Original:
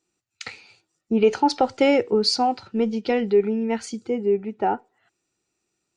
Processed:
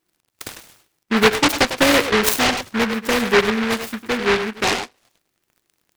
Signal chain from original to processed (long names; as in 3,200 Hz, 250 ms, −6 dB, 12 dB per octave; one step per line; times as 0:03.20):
surface crackle 53 per second −47 dBFS
far-end echo of a speakerphone 100 ms, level −7 dB
short delay modulated by noise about 1,500 Hz, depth 0.29 ms
level +2.5 dB